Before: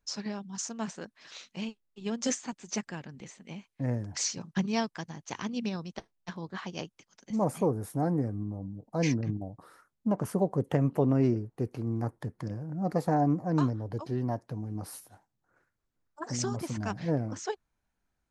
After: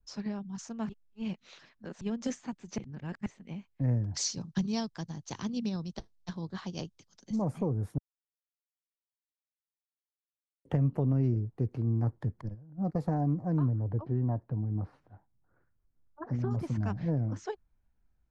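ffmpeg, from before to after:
-filter_complex "[0:a]asettb=1/sr,asplit=3[s0][s1][s2];[s0]atrim=end=4.144[s3];[s1]atrim=start=4.14:end=7.42,asetpts=PTS-STARTPTS,afade=t=in:d=0.004:c=qsin,afade=t=out:st=3.276:d=0.004:c=qsin,highshelf=f=3200:t=q:w=1.5:g=8.5[s4];[s2]atrim=start=7.416[s5];[s3][s4]acrossfade=d=0.004:c1=hsin:c2=qsin[s6];[s6][s5]acrossfade=d=0.004:c1=qsin:c2=hsin,asettb=1/sr,asplit=3[s7][s8][s9];[s7]atrim=end=12.414[s10];[s8]atrim=start=12.41:end=12.95,asetpts=PTS-STARTPTS,afade=t=in:d=0.004:c=qsin,afade=t=out:st=0.536:d=0.004:c=qsin,agate=range=0.141:threshold=0.02:ratio=16:release=100:detection=peak[s11];[s9]atrim=start=12.946[s12];[s10][s11]acrossfade=d=0.004:c1=hsin:c2=qsin[s13];[s13][s12]acrossfade=d=0.004:c1=qsin:c2=hsin,asettb=1/sr,asplit=3[s14][s15][s16];[s14]atrim=end=13.574[s17];[s15]atrim=start=13.57:end=16.51,asetpts=PTS-STARTPTS,afade=t=in:d=0.004:c=qsin,afade=t=out:st=2.936:d=0.004:c=qsin,lowpass=1800[s18];[s16]atrim=start=16.506[s19];[s17][s18]acrossfade=d=0.004:c1=hsin:c2=qsin[s20];[s20][s19]acrossfade=d=0.004:c1=qsin:c2=hsin,asplit=7[s21][s22][s23][s24][s25][s26][s27];[s21]atrim=end=0.892[s28];[s22]atrim=start=0.888:end=2.012,asetpts=PTS-STARTPTS,areverse[s29];[s23]atrim=start=2.008:end=2.782[s30];[s24]atrim=start=2.778:end=3.262,asetpts=PTS-STARTPTS,areverse[s31];[s25]atrim=start=3.258:end=7.98,asetpts=PTS-STARTPTS,afade=t=out:st=4.718:d=0.004:c=hsin[s32];[s26]atrim=start=7.98:end=10.65,asetpts=PTS-STARTPTS,volume=0[s33];[s27]atrim=start=10.65,asetpts=PTS-STARTPTS,afade=t=in:d=0.004:c=hsin[s34];[s28][s29]acrossfade=d=0.004:c1=hsin:c2=hsin[s35];[s35][s30]acrossfade=d=0.004:c1=hsin:c2=hsin[s36];[s36][s31]acrossfade=d=0.004:c1=hsin:c2=hsin[s37];[s32][s33][s34]concat=n=3:v=0:a=1[s38];[s37][s38]acrossfade=d=0.004:c1=hsin:c2=hsin,aemphasis=mode=reproduction:type=bsi,acrossover=split=130|3000[s39][s40][s41];[s40]acompressor=threshold=0.0562:ratio=4[s42];[s39][s42][s41]amix=inputs=3:normalize=0,adynamicequalizer=threshold=0.00631:dfrequency=2000:dqfactor=0.7:tfrequency=2000:tqfactor=0.7:attack=5:release=100:ratio=0.375:range=2:mode=cutabove:tftype=highshelf,volume=0.631"

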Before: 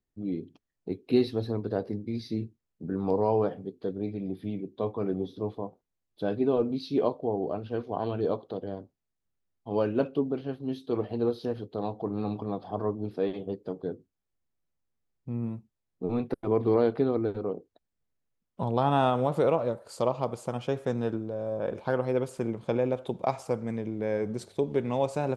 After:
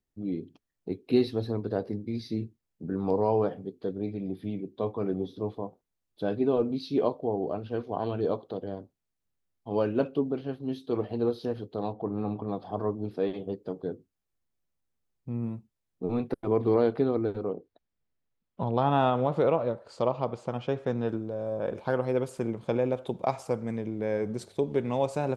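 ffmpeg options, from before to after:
-filter_complex "[0:a]asplit=3[s0][s1][s2];[s0]afade=t=out:st=11.92:d=0.02[s3];[s1]lowpass=2300,afade=t=in:st=11.92:d=0.02,afade=t=out:st=12.47:d=0.02[s4];[s2]afade=t=in:st=12.47:d=0.02[s5];[s3][s4][s5]amix=inputs=3:normalize=0,asettb=1/sr,asplit=3[s6][s7][s8];[s6]atrim=end=17.494[s9];[s7]atrim=start=17.49:end=21.09,asetpts=PTS-STARTPTS,afade=t=in:d=0.004:c=qsin,afade=t=out:st=3.596:d=0.004:c=qsin,lowpass=4400[s10];[s8]atrim=start=21.086[s11];[s9][s10]acrossfade=d=0.004:c1=hsin:c2=qsin[s12];[s12][s11]acrossfade=d=0.004:c1=qsin:c2=hsin"

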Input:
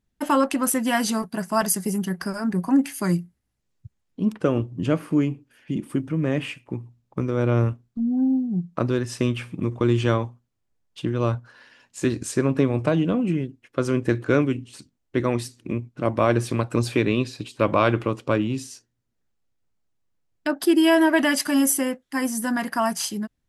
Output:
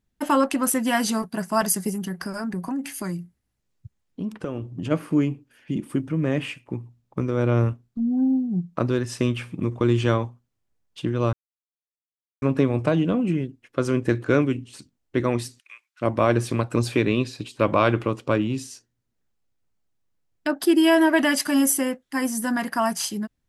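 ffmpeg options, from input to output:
-filter_complex "[0:a]asplit=3[s0][s1][s2];[s0]afade=t=out:st=1.89:d=0.02[s3];[s1]acompressor=threshold=0.0562:ratio=6:attack=3.2:release=140:knee=1:detection=peak,afade=t=in:st=1.89:d=0.02,afade=t=out:st=4.9:d=0.02[s4];[s2]afade=t=in:st=4.9:d=0.02[s5];[s3][s4][s5]amix=inputs=3:normalize=0,asplit=3[s6][s7][s8];[s6]afade=t=out:st=15.58:d=0.02[s9];[s7]highpass=f=1400:w=0.5412,highpass=f=1400:w=1.3066,afade=t=in:st=15.58:d=0.02,afade=t=out:st=16.01:d=0.02[s10];[s8]afade=t=in:st=16.01:d=0.02[s11];[s9][s10][s11]amix=inputs=3:normalize=0,asplit=3[s12][s13][s14];[s12]atrim=end=11.33,asetpts=PTS-STARTPTS,afade=t=out:st=11.326:d=0.004:c=hsin[s15];[s13]atrim=start=11.33:end=12.42,asetpts=PTS-STARTPTS,volume=0[s16];[s14]atrim=start=12.42,asetpts=PTS-STARTPTS,afade=t=in:d=0.004:c=hsin[s17];[s15][s16][s17]concat=n=3:v=0:a=1"

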